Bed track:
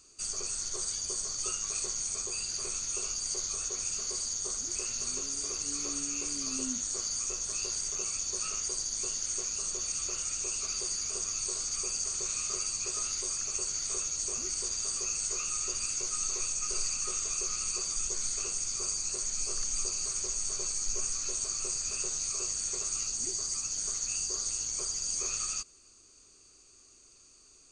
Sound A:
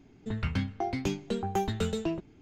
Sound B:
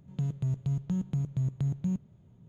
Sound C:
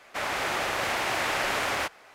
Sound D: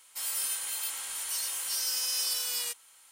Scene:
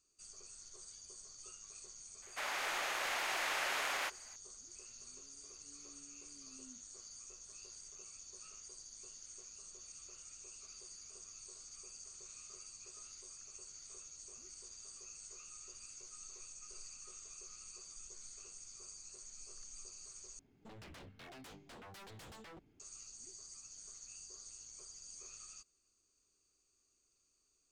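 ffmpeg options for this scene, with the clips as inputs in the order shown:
-filter_complex "[0:a]volume=0.106[s0];[3:a]highpass=f=950:p=1[s1];[1:a]aeval=exprs='0.0168*(abs(mod(val(0)/0.0168+3,4)-2)-1)':c=same[s2];[s0]asplit=2[s3][s4];[s3]atrim=end=20.394[s5];[s2]atrim=end=2.41,asetpts=PTS-STARTPTS,volume=0.211[s6];[s4]atrim=start=22.796[s7];[s1]atrim=end=2.14,asetpts=PTS-STARTPTS,volume=0.422,afade=t=in:d=0.004:c=hsin,afade=t=out:st=2.136:d=0.004:c=hsin,adelay=2220[s8];[s5][s6]acrossfade=d=0.004:c1=hsin:c2=hsin[s9];[s9][s7]acrossfade=d=0.004:c1=hsin:c2=hsin[s10];[s10][s8]amix=inputs=2:normalize=0"

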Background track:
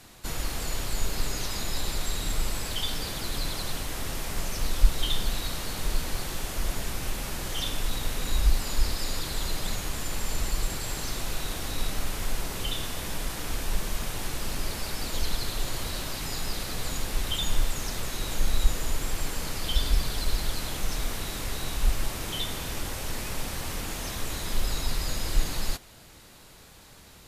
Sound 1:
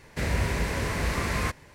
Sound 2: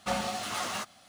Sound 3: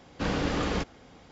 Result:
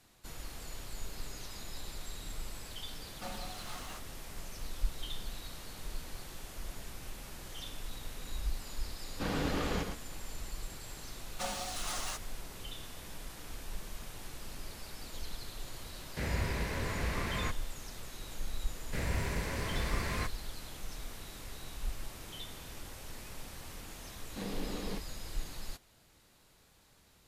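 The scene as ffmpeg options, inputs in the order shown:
-filter_complex "[2:a]asplit=2[s0][s1];[3:a]asplit=2[s2][s3];[1:a]asplit=2[s4][s5];[0:a]volume=0.211[s6];[s2]aecho=1:1:112:0.501[s7];[s1]bass=f=250:g=-7,treble=f=4000:g=8[s8];[s4]acrossover=split=5600[s9][s10];[s10]acompressor=threshold=0.00355:ratio=4:attack=1:release=60[s11];[s9][s11]amix=inputs=2:normalize=0[s12];[s3]highpass=160,equalizer=f=200:t=q:w=4:g=9,equalizer=f=420:t=q:w=4:g=5,equalizer=f=1400:t=q:w=4:g=-9,equalizer=f=4200:t=q:w=4:g=4,lowpass=f=6900:w=0.5412,lowpass=f=6900:w=1.3066[s13];[s0]atrim=end=1.08,asetpts=PTS-STARTPTS,volume=0.211,afade=t=in:d=0.004:c=hsin,afade=t=out:st=1.076:d=0.004:c=hsin,adelay=3150[s14];[s7]atrim=end=1.31,asetpts=PTS-STARTPTS,volume=0.473,afade=t=in:d=0.004:c=hsin,afade=t=out:st=1.306:d=0.004:c=hsin,adelay=9000[s15];[s8]atrim=end=1.08,asetpts=PTS-STARTPTS,volume=0.398,afade=t=in:d=0.004:c=hsin,afade=t=out:st=1.076:d=0.004:c=hsin,adelay=11330[s16];[s12]atrim=end=1.74,asetpts=PTS-STARTPTS,volume=0.422,afade=t=in:d=0.004:c=hsin,afade=t=out:st=1.736:d=0.004:c=hsin,adelay=16000[s17];[s5]atrim=end=1.74,asetpts=PTS-STARTPTS,volume=0.398,afade=t=in:d=0.004:c=hsin,afade=t=out:st=1.736:d=0.004:c=hsin,adelay=827316S[s18];[s13]atrim=end=1.31,asetpts=PTS-STARTPTS,volume=0.211,afade=t=in:d=0.004:c=hsin,afade=t=out:st=1.306:d=0.004:c=hsin,adelay=24160[s19];[s6][s14][s15][s16][s17][s18][s19]amix=inputs=7:normalize=0"

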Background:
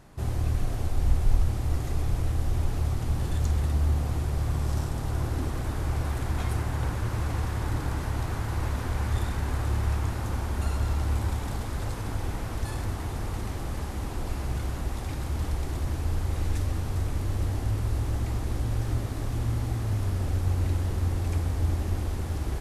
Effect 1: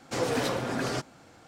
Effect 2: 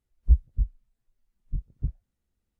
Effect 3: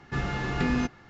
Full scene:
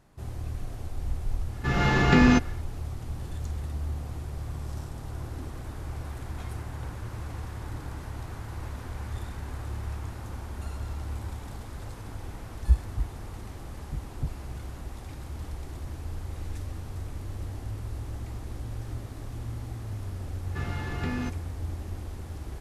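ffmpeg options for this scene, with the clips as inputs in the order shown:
-filter_complex "[3:a]asplit=2[s0][s1];[0:a]volume=0.398[s2];[s0]dynaudnorm=f=160:g=3:m=2.66[s3];[2:a]highpass=53[s4];[s3]atrim=end=1.09,asetpts=PTS-STARTPTS,afade=t=in:d=0.004:c=hsin,afade=t=out:st=1.086:d=0.004:c=hsin,adelay=1520[s5];[s4]atrim=end=2.59,asetpts=PTS-STARTPTS,afade=t=in:d=0.004:c=hsin,afade=t=out:st=2.586:d=0.004:c=hsin,adelay=12390[s6];[s1]atrim=end=1.09,asetpts=PTS-STARTPTS,volume=0.501,afade=t=in:d=0.004:c=hsin,afade=t=out:st=1.086:d=0.004:c=hsin,adelay=20430[s7];[s2][s5][s6][s7]amix=inputs=4:normalize=0"

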